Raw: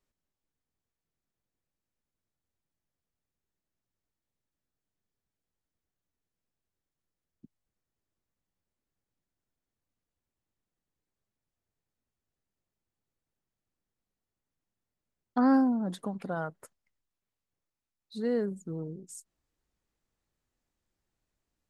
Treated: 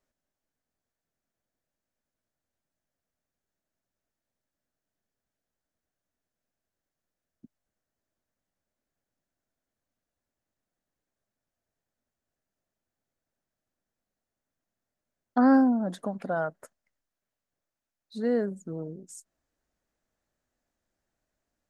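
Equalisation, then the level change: fifteen-band graphic EQ 250 Hz +5 dB, 630 Hz +10 dB, 1.6 kHz +7 dB, 6.3 kHz +4 dB; -2.0 dB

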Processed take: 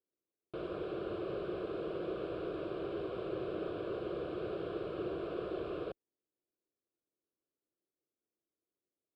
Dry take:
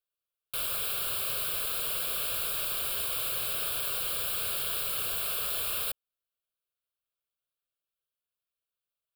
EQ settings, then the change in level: band-pass filter 330 Hz, Q 3.9; distance through air 130 m; tilt EQ -1.5 dB/octave; +16.5 dB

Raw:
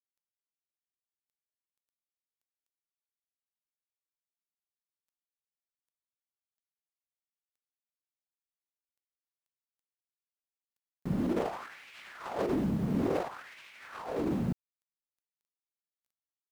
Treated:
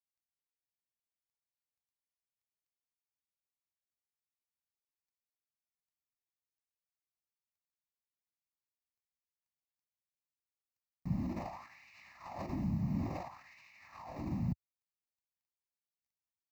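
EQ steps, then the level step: peaking EQ 84 Hz +9 dB 2.1 oct; static phaser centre 2.2 kHz, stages 8; -6.0 dB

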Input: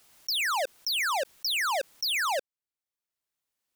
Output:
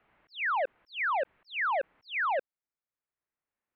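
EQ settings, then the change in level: inverse Chebyshev low-pass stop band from 5.6 kHz, stop band 50 dB; 0.0 dB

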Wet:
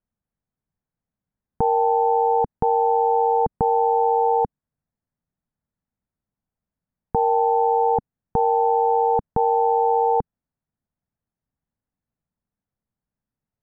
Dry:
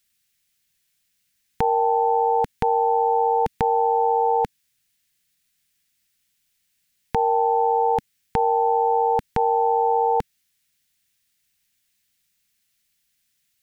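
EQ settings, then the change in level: low-pass 1 kHz 24 dB/octave; +1.5 dB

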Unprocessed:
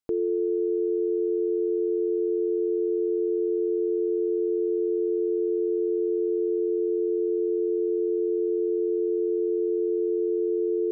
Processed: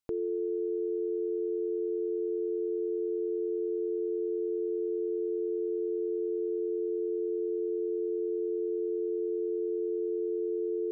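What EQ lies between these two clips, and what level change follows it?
peaking EQ 360 Hz -7 dB 1.4 oct; 0.0 dB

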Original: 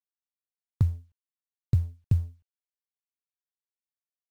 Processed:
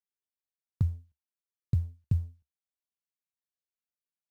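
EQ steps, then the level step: peaking EQ 72 Hz +6.5 dB 0.45 oct; peaking EQ 180 Hz +5.5 dB 0.91 oct; -7.0 dB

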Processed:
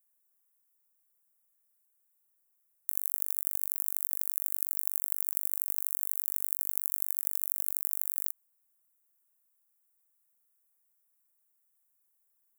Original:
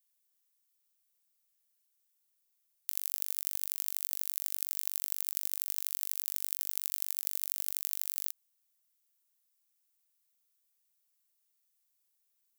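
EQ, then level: Butterworth band-stop 3.9 kHz, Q 0.6; +3.5 dB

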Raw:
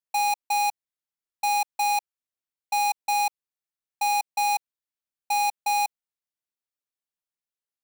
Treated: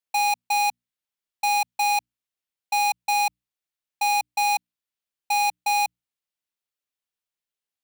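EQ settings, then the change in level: peaking EQ 3 kHz +4 dB 1.1 oct; hum notches 60/120/180/240/300 Hz; +1.0 dB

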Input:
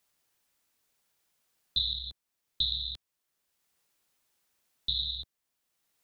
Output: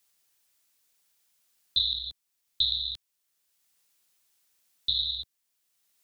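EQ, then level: treble shelf 2.1 kHz +10 dB; -4.0 dB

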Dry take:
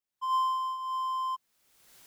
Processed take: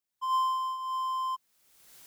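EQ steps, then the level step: treble shelf 5.1 kHz +4 dB; 0.0 dB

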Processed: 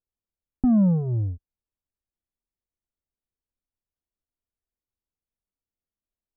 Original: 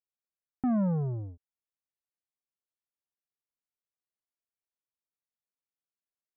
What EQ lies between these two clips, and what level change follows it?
distance through air 400 m; tilt EQ -4.5 dB/octave; peaking EQ 140 Hz -11.5 dB 0.31 oct; 0.0 dB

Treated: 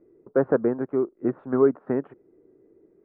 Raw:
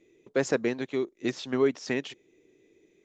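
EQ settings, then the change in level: elliptic low-pass 1.4 kHz, stop band 80 dB; +5.5 dB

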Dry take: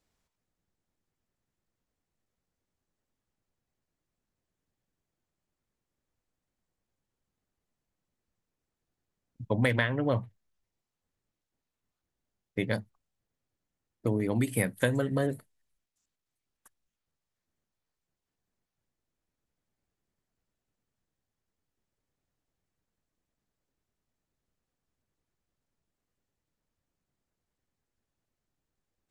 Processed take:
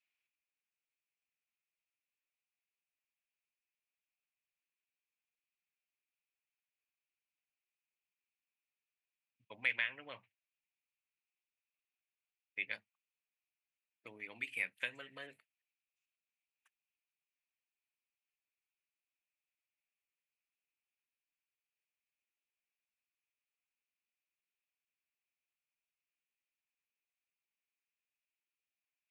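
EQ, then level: band-pass filter 2.5 kHz, Q 7; +6.0 dB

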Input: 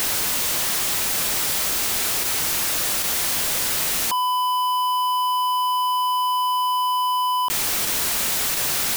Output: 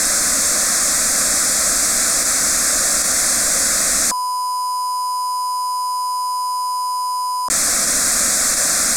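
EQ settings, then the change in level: resonant low-pass 7.9 kHz, resonance Q 2; static phaser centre 600 Hz, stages 8; +8.5 dB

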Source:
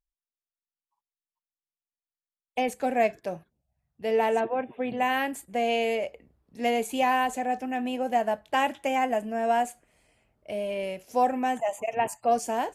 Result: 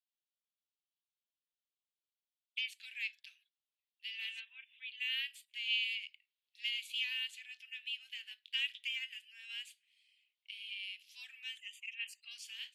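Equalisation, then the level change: steep high-pass 3 kHz 36 dB/octave; distance through air 430 m; +14.0 dB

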